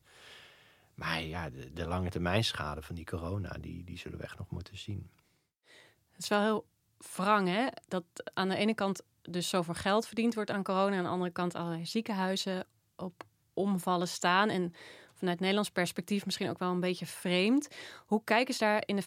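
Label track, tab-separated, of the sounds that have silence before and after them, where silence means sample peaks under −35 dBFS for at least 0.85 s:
1.010000	4.990000	sound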